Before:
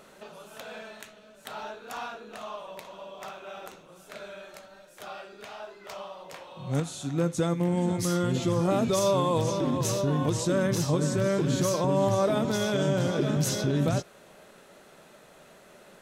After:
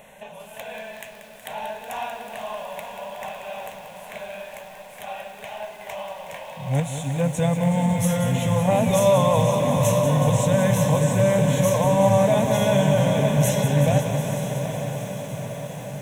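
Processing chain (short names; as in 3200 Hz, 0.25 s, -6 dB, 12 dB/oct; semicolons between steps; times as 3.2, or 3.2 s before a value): fixed phaser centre 1300 Hz, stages 6; diffused feedback echo 0.9 s, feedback 60%, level -9 dB; lo-fi delay 0.185 s, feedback 80%, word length 9-bit, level -9 dB; gain +8.5 dB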